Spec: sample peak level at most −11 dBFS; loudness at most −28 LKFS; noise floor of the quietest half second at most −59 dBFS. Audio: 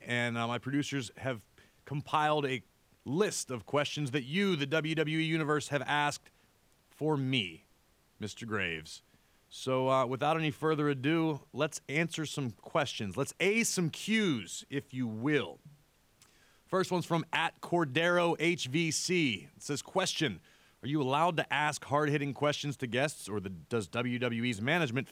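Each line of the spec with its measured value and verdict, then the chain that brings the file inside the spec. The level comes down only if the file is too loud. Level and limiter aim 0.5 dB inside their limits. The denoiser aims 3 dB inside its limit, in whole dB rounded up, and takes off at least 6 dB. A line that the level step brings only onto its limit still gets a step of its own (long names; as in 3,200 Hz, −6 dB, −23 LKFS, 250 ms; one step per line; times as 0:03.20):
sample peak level −15.0 dBFS: in spec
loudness −32.0 LKFS: in spec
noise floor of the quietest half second −68 dBFS: in spec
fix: no processing needed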